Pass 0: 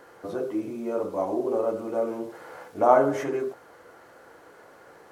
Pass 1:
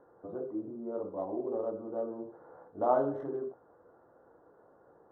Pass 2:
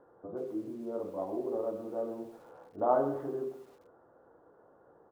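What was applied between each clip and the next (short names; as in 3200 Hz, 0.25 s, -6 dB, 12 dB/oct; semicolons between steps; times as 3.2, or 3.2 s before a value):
Wiener smoothing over 15 samples; running mean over 19 samples; gain -7.5 dB
downsampling 8000 Hz; lo-fi delay 0.131 s, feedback 35%, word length 9-bit, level -13 dB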